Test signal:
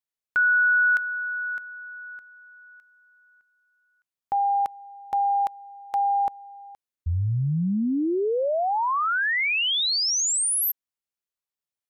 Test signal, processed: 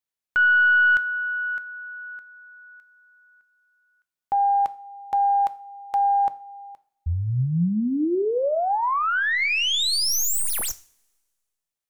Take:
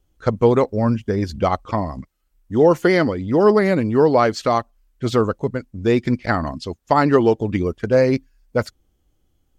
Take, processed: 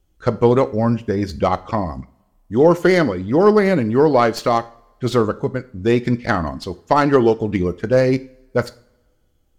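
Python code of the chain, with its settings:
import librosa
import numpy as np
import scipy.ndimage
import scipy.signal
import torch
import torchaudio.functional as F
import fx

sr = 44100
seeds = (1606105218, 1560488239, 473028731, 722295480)

y = fx.tracing_dist(x, sr, depth_ms=0.038)
y = fx.rev_double_slope(y, sr, seeds[0], early_s=0.43, late_s=1.7, knee_db=-24, drr_db=13.0)
y = F.gain(torch.from_numpy(y), 1.0).numpy()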